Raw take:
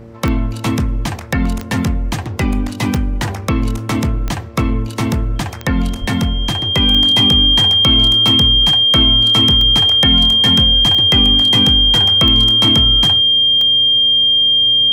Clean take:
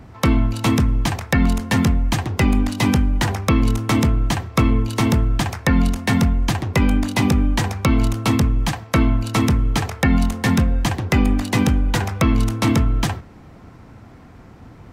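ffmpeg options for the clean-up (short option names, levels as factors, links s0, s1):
-filter_complex "[0:a]adeclick=t=4,bandreject=f=114.1:t=h:w=4,bandreject=f=228.2:t=h:w=4,bandreject=f=342.3:t=h:w=4,bandreject=f=456.4:t=h:w=4,bandreject=f=570.5:t=h:w=4,bandreject=f=3200:w=30,asplit=3[s0][s1][s2];[s0]afade=t=out:st=6:d=0.02[s3];[s1]highpass=f=140:w=0.5412,highpass=f=140:w=1.3066,afade=t=in:st=6:d=0.02,afade=t=out:st=6.12:d=0.02[s4];[s2]afade=t=in:st=6.12:d=0.02[s5];[s3][s4][s5]amix=inputs=3:normalize=0"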